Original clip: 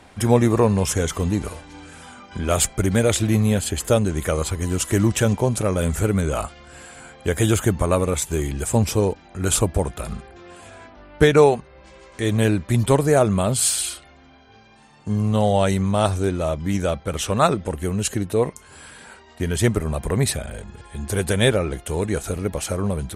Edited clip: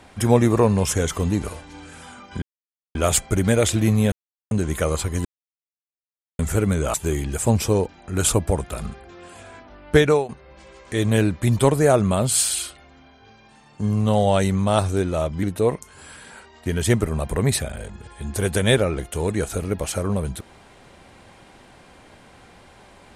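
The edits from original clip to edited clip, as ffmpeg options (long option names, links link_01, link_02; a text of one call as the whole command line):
ffmpeg -i in.wav -filter_complex "[0:a]asplit=9[link_01][link_02][link_03][link_04][link_05][link_06][link_07][link_08][link_09];[link_01]atrim=end=2.42,asetpts=PTS-STARTPTS,afade=type=out:start_time=2.416:duration=0.004:curve=hsin,apad=pad_dur=0.53[link_10];[link_02]atrim=start=2.42:end=3.59,asetpts=PTS-STARTPTS,afade=type=in:duration=0.004:curve=hsin,afade=type=out:start_time=1.166:duration=0.004:curve=hsin[link_11];[link_03]atrim=start=3.59:end=3.98,asetpts=PTS-STARTPTS,volume=0[link_12];[link_04]atrim=start=3.98:end=4.72,asetpts=PTS-STARTPTS,afade=type=in:duration=0.004:curve=hsin,afade=type=out:start_time=0.736:duration=0.004:curve=hsin[link_13];[link_05]atrim=start=4.72:end=5.86,asetpts=PTS-STARTPTS,volume=0[link_14];[link_06]atrim=start=5.86:end=6.412,asetpts=PTS-STARTPTS,afade=type=in:duration=0.004:curve=hsin[link_15];[link_07]atrim=start=8.208:end=11.56,asetpts=PTS-STARTPTS,afade=type=out:start_time=3.052:duration=0.3:silence=0.149624[link_16];[link_08]atrim=start=11.56:end=16.702,asetpts=PTS-STARTPTS,afade=type=in:duration=0.004:curve=hsin:silence=0.149624[link_17];[link_09]atrim=start=18.168[link_18];[link_10][link_11][link_12][link_13][link_14][link_15]concat=n=6:v=0:a=1[link_19];[link_16][link_17]concat=n=2:v=0:a=1[link_20];[link_19][link_20]acrossfade=duration=0.004:curve1=hsin:curve2=hsin[link_21];[link_21][link_18]acrossfade=duration=0.004:curve1=hsin:curve2=hsin" out.wav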